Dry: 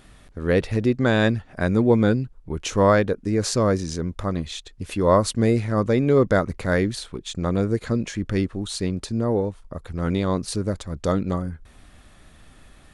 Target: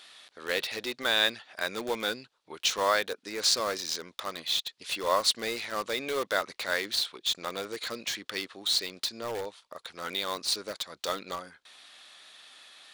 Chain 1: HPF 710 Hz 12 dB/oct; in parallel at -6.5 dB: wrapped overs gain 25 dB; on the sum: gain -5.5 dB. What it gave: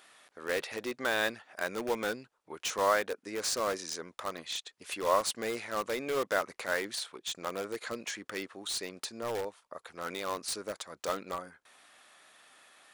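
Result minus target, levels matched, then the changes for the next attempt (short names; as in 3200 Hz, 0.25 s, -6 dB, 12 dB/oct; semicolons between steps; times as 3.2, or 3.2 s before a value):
4000 Hz band -6.0 dB
add after HPF: bell 3900 Hz +13.5 dB 1.2 oct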